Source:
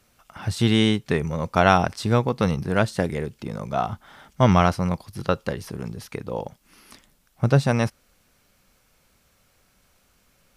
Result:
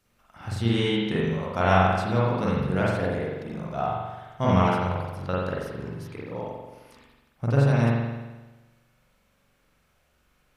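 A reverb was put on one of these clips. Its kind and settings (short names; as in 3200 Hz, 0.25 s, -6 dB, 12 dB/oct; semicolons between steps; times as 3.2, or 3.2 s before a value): spring tank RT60 1.2 s, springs 43 ms, chirp 45 ms, DRR -6.5 dB; gain -10 dB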